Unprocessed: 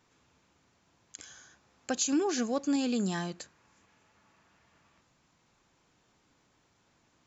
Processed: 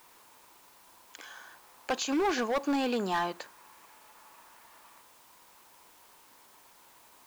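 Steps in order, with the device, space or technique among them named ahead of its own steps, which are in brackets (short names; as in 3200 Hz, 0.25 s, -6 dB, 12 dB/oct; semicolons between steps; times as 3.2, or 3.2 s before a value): drive-through speaker (BPF 420–3000 Hz; bell 960 Hz +9 dB 0.41 oct; hard clip -31.5 dBFS, distortion -9 dB; white noise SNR 24 dB); gain +7.5 dB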